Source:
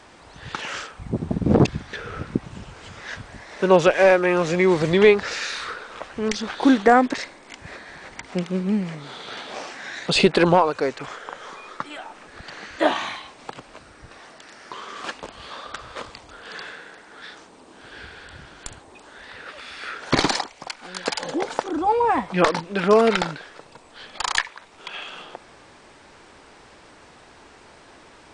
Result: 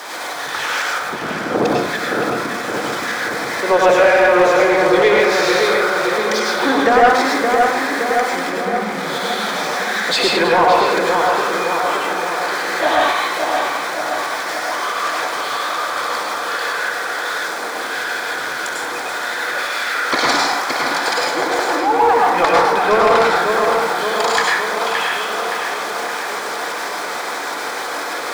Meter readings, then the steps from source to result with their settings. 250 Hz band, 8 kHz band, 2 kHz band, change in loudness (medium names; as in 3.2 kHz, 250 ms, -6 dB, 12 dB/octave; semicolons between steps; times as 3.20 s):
+0.5 dB, +10.5 dB, +11.5 dB, +4.5 dB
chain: jump at every zero crossing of -27 dBFS; high-pass 150 Hz 12 dB/octave; tone controls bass -9 dB, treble +4 dB; band-stop 2.8 kHz, Q 6.8; tremolo saw up 6.1 Hz, depth 45%; filtered feedback delay 569 ms, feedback 66%, low-pass 2.7 kHz, level -5 dB; plate-style reverb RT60 0.77 s, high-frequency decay 0.5×, pre-delay 85 ms, DRR -3 dB; overdrive pedal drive 13 dB, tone 3 kHz, clips at -2 dBFS; trim -1 dB